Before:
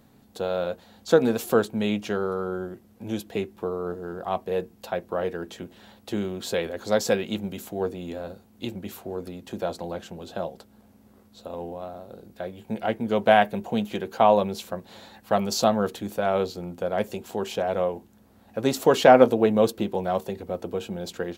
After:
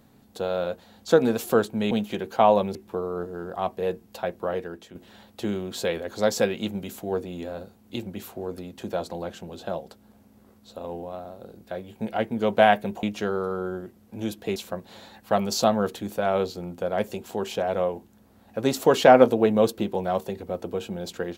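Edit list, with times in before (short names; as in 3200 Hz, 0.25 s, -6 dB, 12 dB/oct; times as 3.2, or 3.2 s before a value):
1.91–3.44 swap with 13.72–14.56
5.14–5.64 fade out, to -10 dB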